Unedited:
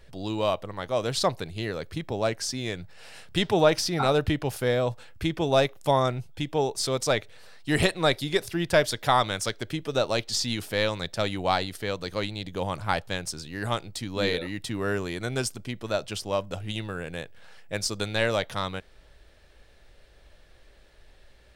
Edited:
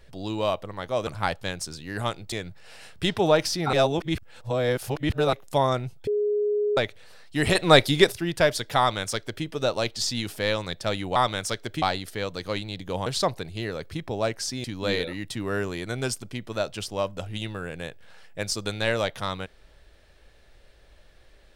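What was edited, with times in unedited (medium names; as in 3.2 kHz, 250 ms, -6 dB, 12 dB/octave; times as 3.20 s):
1.07–2.65 s: swap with 12.73–13.98 s
4.06–5.66 s: reverse
6.40–7.10 s: bleep 416 Hz -21 dBFS
7.88–8.45 s: gain +7.5 dB
9.12–9.78 s: copy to 11.49 s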